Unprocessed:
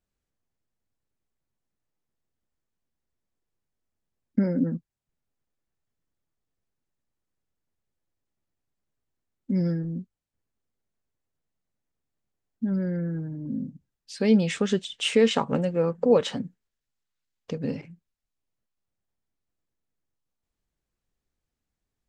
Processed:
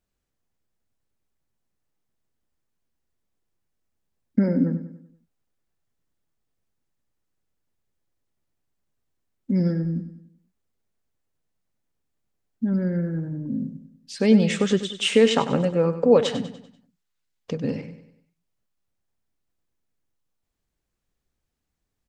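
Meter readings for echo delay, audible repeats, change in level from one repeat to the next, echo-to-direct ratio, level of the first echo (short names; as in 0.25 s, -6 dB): 97 ms, 4, -7.0 dB, -11.0 dB, -12.0 dB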